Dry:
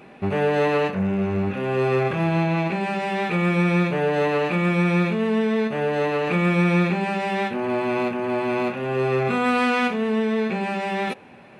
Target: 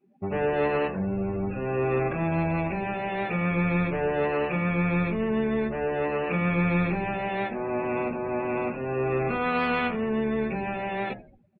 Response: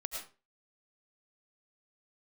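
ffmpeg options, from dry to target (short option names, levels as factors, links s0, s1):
-filter_complex "[0:a]asplit=2[s0][s1];[s1]asplit=6[s2][s3][s4][s5][s6][s7];[s2]adelay=85,afreqshift=-76,volume=0.2[s8];[s3]adelay=170,afreqshift=-152,volume=0.117[s9];[s4]adelay=255,afreqshift=-228,volume=0.0692[s10];[s5]adelay=340,afreqshift=-304,volume=0.0412[s11];[s6]adelay=425,afreqshift=-380,volume=0.0243[s12];[s7]adelay=510,afreqshift=-456,volume=0.0143[s13];[s8][s9][s10][s11][s12][s13]amix=inputs=6:normalize=0[s14];[s0][s14]amix=inputs=2:normalize=0,afftdn=nr=32:nf=-33,bandreject=f=50:t=h:w=6,bandreject=f=100:t=h:w=6,bandreject=f=150:t=h:w=6,bandreject=f=200:t=h:w=6,bandreject=f=250:t=h:w=6,bandreject=f=300:t=h:w=6,bandreject=f=350:t=h:w=6,volume=0.596"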